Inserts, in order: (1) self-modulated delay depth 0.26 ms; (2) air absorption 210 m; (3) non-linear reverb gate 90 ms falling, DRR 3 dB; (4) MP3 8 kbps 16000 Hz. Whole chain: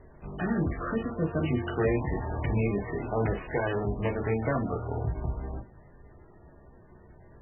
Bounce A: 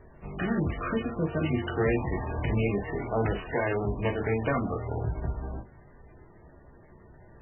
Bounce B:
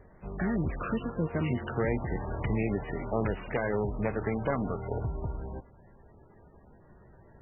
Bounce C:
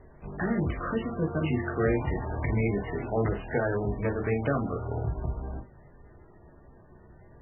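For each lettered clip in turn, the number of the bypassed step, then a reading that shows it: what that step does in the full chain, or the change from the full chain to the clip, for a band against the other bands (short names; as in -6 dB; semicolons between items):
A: 2, 2 kHz band +2.0 dB; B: 3, momentary loudness spread change -1 LU; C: 1, crest factor change +1.5 dB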